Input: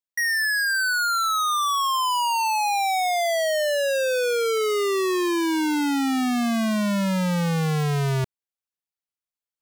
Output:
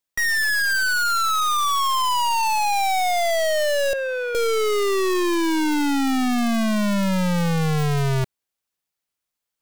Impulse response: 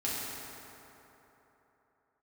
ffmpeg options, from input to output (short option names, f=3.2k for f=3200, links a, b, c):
-filter_complex "[0:a]aeval=exprs='0.0794*(cos(1*acos(clip(val(0)/0.0794,-1,1)))-cos(1*PI/2))+0.0282*(cos(5*acos(clip(val(0)/0.0794,-1,1)))-cos(5*PI/2))+0.0251*(cos(6*acos(clip(val(0)/0.0794,-1,1)))-cos(6*PI/2))+0.02*(cos(8*acos(clip(val(0)/0.0794,-1,1)))-cos(8*PI/2))':c=same,acrusher=bits=2:mode=log:mix=0:aa=0.000001,asettb=1/sr,asplit=3[a][b][c];[a]atrim=end=3.934[d];[b]atrim=start=3.93:end=4.35,asetpts=PTS-STARTPTS,afade=t=in:d=0.004:c=qsin,afade=t=out:st=0.416:d=0.004:c=qsin,acrossover=split=490 2500:gain=0.0708 1 0.0891[e][f][g];[e][f][g]amix=inputs=3:normalize=0[h];[c]atrim=start=4.346[i];[d][h]acrossfade=d=0.004:c1=hsin:c2=qsin[j];[j][i]acrossfade=d=0.004:c1=qsin:c2=hsin"